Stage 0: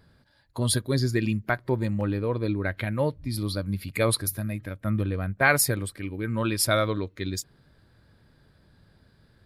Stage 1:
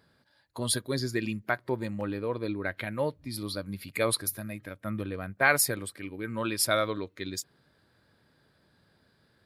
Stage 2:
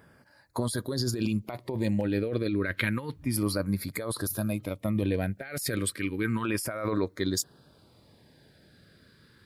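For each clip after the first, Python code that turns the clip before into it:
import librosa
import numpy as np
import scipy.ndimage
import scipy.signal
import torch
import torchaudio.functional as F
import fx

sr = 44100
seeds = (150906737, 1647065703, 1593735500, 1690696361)

y1 = fx.highpass(x, sr, hz=280.0, slope=6)
y1 = y1 * librosa.db_to_amplitude(-2.0)
y2 = fx.over_compress(y1, sr, threshold_db=-34.0, ratio=-1.0)
y2 = fx.filter_lfo_notch(y2, sr, shape='saw_down', hz=0.31, low_hz=550.0, high_hz=4300.0, q=1.1)
y2 = y2 * librosa.db_to_amplitude(5.5)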